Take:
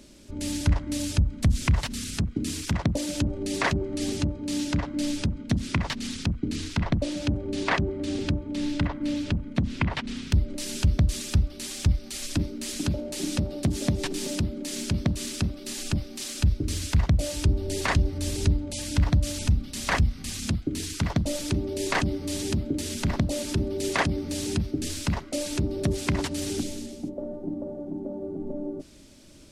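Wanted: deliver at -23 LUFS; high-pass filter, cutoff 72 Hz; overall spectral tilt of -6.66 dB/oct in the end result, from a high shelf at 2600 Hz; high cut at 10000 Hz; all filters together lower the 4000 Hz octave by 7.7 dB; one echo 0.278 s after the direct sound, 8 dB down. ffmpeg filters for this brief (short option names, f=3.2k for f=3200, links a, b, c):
-af "highpass=72,lowpass=10k,highshelf=f=2.6k:g=-5.5,equalizer=f=4k:t=o:g=-5,aecho=1:1:278:0.398,volume=6dB"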